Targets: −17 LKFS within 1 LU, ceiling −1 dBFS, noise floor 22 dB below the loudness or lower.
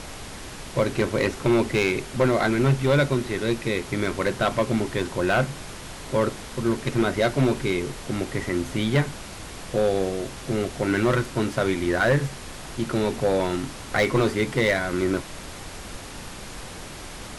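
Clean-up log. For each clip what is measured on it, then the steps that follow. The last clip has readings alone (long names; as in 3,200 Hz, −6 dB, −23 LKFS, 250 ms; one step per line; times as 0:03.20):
share of clipped samples 1.2%; peaks flattened at −14.0 dBFS; background noise floor −38 dBFS; target noise floor −46 dBFS; integrated loudness −24.0 LKFS; sample peak −14.0 dBFS; target loudness −17.0 LKFS
→ clipped peaks rebuilt −14 dBFS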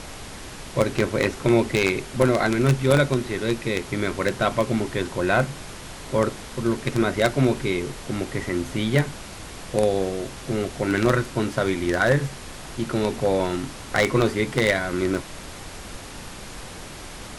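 share of clipped samples 0.0%; background noise floor −38 dBFS; target noise floor −46 dBFS
→ noise reduction from a noise print 8 dB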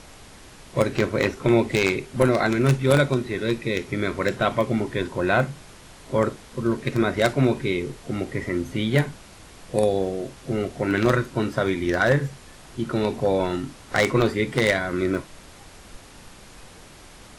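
background noise floor −46 dBFS; integrated loudness −23.5 LKFS; sample peak −5.0 dBFS; target loudness −17.0 LKFS
→ level +6.5 dB
brickwall limiter −1 dBFS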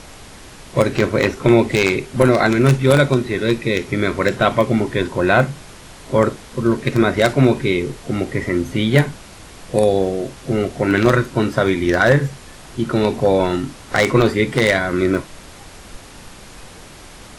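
integrated loudness −17.5 LKFS; sample peak −1.0 dBFS; background noise floor −40 dBFS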